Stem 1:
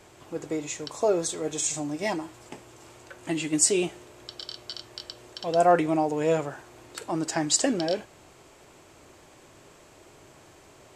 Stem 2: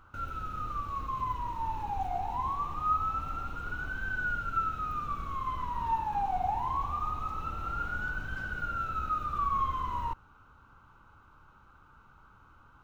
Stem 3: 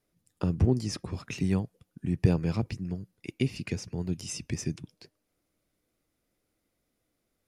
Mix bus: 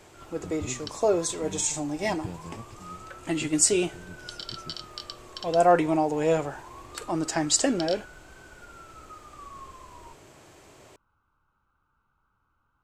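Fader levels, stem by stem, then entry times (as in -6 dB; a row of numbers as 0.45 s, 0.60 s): +0.5 dB, -15.0 dB, -14.0 dB; 0.00 s, 0.00 s, 0.00 s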